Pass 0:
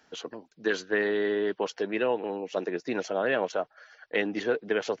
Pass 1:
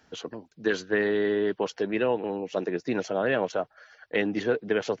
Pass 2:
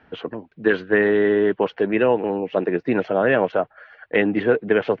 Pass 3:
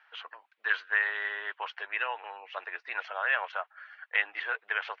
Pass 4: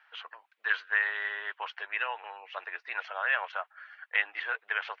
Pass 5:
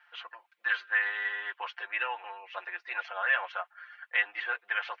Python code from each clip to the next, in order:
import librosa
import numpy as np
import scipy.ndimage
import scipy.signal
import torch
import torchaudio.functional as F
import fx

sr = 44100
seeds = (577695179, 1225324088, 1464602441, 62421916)

y1 = fx.peak_eq(x, sr, hz=68.0, db=12.5, octaves=2.7)
y2 = scipy.signal.sosfilt(scipy.signal.butter(4, 2800.0, 'lowpass', fs=sr, output='sos'), y1)
y2 = F.gain(torch.from_numpy(y2), 7.5).numpy()
y3 = scipy.signal.sosfilt(scipy.signal.butter(4, 1000.0, 'highpass', fs=sr, output='sos'), y2)
y3 = F.gain(torch.from_numpy(y3), -3.0).numpy()
y4 = fx.low_shelf(y3, sr, hz=360.0, db=-6.0)
y5 = y4 + 0.93 * np.pad(y4, (int(5.7 * sr / 1000.0), 0))[:len(y4)]
y5 = F.gain(torch.from_numpy(y5), -2.5).numpy()